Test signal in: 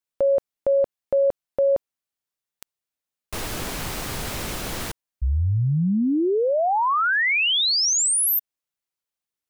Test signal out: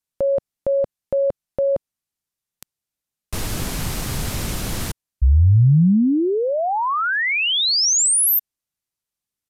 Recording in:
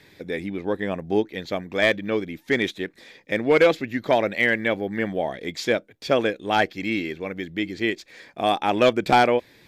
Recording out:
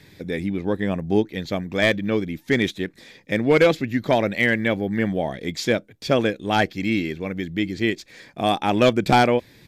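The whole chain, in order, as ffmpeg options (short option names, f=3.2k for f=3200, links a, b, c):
-af "bass=f=250:g=14,treble=f=4k:g=4,aresample=32000,aresample=44100,lowshelf=f=190:g=-6.5"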